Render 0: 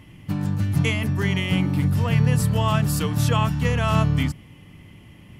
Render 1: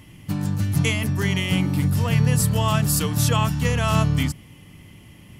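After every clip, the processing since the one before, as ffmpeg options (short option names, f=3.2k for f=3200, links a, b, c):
-af "bass=f=250:g=0,treble=f=4k:g=8"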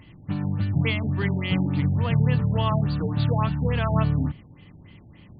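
-af "afftfilt=real='re*lt(b*sr/1024,860*pow(4900/860,0.5+0.5*sin(2*PI*3.5*pts/sr)))':imag='im*lt(b*sr/1024,860*pow(4900/860,0.5+0.5*sin(2*PI*3.5*pts/sr)))':win_size=1024:overlap=0.75,volume=-2dB"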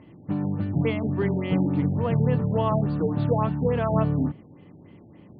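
-af "bandpass=f=420:t=q:w=0.92:csg=0,volume=6.5dB"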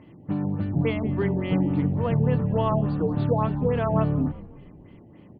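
-filter_complex "[0:a]asplit=5[a][b][c][d][e];[b]adelay=182,afreqshift=-64,volume=-19dB[f];[c]adelay=364,afreqshift=-128,volume=-25dB[g];[d]adelay=546,afreqshift=-192,volume=-31dB[h];[e]adelay=728,afreqshift=-256,volume=-37.1dB[i];[a][f][g][h][i]amix=inputs=5:normalize=0"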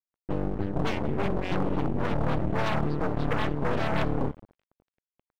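-af "aeval=exprs='0.299*(cos(1*acos(clip(val(0)/0.299,-1,1)))-cos(1*PI/2))+0.0335*(cos(3*acos(clip(val(0)/0.299,-1,1)))-cos(3*PI/2))+0.0168*(cos(5*acos(clip(val(0)/0.299,-1,1)))-cos(5*PI/2))+0.106*(cos(8*acos(clip(val(0)/0.299,-1,1)))-cos(8*PI/2))':c=same,aeval=exprs='sgn(val(0))*max(abs(val(0))-0.0141,0)':c=same,volume=-7dB"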